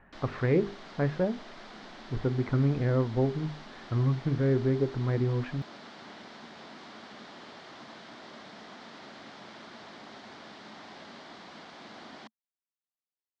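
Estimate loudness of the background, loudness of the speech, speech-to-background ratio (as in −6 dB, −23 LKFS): −47.0 LKFS, −29.5 LKFS, 17.5 dB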